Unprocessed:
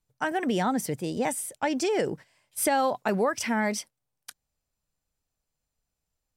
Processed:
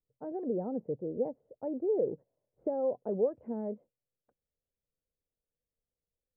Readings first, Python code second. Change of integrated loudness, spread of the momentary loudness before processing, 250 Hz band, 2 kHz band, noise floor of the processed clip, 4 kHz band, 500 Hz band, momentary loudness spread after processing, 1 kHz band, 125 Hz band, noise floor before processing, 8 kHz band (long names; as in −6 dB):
−7.0 dB, 7 LU, −8.0 dB, below −35 dB, below −85 dBFS, below −40 dB, −3.0 dB, 9 LU, −18.0 dB, −9.5 dB, −85 dBFS, below −40 dB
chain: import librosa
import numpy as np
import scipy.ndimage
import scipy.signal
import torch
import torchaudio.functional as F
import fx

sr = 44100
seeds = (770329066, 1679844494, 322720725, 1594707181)

y = fx.ladder_lowpass(x, sr, hz=560.0, resonance_pct=60)